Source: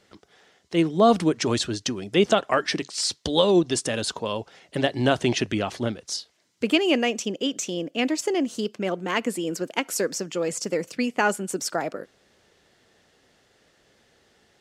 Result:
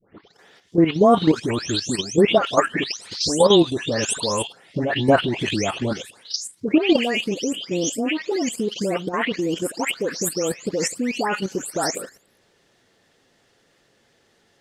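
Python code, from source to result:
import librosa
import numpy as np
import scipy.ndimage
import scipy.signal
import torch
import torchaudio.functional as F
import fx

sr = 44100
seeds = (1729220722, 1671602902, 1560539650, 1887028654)

y = fx.spec_delay(x, sr, highs='late', ms=335)
y = fx.level_steps(y, sr, step_db=10)
y = y * librosa.db_to_amplitude(8.0)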